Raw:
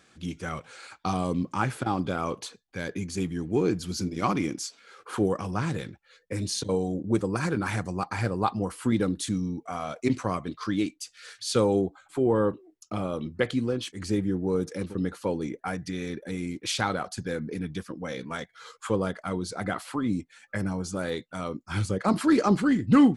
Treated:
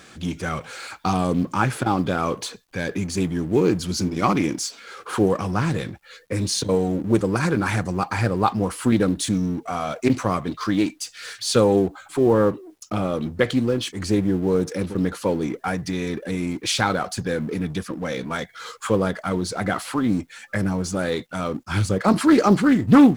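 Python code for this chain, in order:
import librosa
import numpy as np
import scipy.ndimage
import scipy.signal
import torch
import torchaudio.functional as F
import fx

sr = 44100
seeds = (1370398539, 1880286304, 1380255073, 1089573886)

y = fx.law_mismatch(x, sr, coded='mu')
y = fx.doppler_dist(y, sr, depth_ms=0.21)
y = y * 10.0 ** (5.5 / 20.0)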